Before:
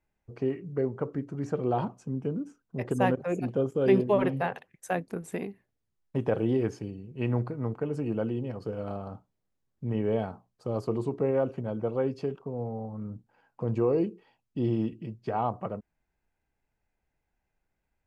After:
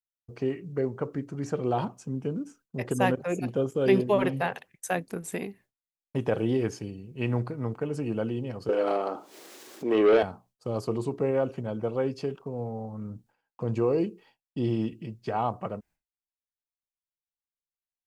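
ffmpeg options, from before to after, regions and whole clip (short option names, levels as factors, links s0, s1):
-filter_complex "[0:a]asettb=1/sr,asplit=3[s0][s1][s2];[s0]atrim=end=8.694[s3];[s1]atrim=start=8.69:end=10.23,asetpts=PTS-STARTPTS,afade=t=in:d=0.004:c=qsin,afade=t=out:st=1.536:d=0.004:c=qsin,highpass=f=340:t=q:w=3.4,acompressor=mode=upward:threshold=0.02:ratio=2.5:attack=3.2:release=140:knee=2.83:detection=peak,asplit=2[s4][s5];[s5]highpass=f=720:p=1,volume=7.08,asoftclip=type=tanh:threshold=0.237[s6];[s4][s6]amix=inputs=2:normalize=0,lowpass=f=4600:p=1,volume=0.501[s7];[s2]atrim=start=10.226[s8];[s3][s7]acrossfade=d=0.004:c1=hsin:c2=qsin[s9];[s9][s8]acrossfade=d=0.004:c1=qsin:c2=hsin,agate=range=0.0224:threshold=0.00224:ratio=3:detection=peak,highshelf=f=2500:g=9.5"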